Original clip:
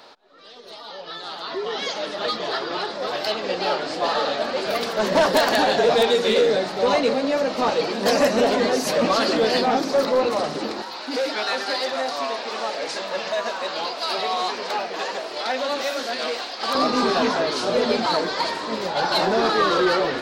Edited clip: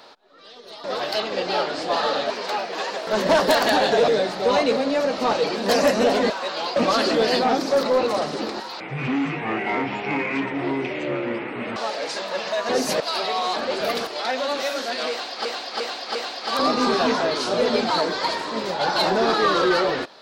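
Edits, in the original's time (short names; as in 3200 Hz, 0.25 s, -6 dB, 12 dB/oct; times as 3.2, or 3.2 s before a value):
0.84–2.96 cut
4.42–4.93 swap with 14.51–15.28
5.94–6.45 cut
8.67–8.98 swap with 13.49–13.95
11.02–12.56 speed 52%
16.31–16.66 loop, 4 plays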